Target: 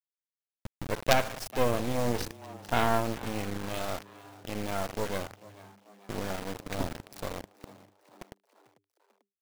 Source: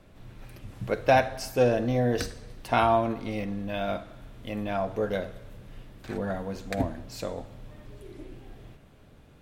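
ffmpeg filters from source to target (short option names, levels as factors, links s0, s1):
-filter_complex "[0:a]afftfilt=real='re*gte(hypot(re,im),0.00794)':imag='im*gte(hypot(re,im),0.00794)':win_size=1024:overlap=0.75,acrusher=bits=3:dc=4:mix=0:aa=0.000001,asplit=5[s0][s1][s2][s3][s4];[s1]adelay=443,afreqshift=99,volume=0.106[s5];[s2]adelay=886,afreqshift=198,volume=0.0582[s6];[s3]adelay=1329,afreqshift=297,volume=0.032[s7];[s4]adelay=1772,afreqshift=396,volume=0.0176[s8];[s0][s5][s6][s7][s8]amix=inputs=5:normalize=0,volume=0.891"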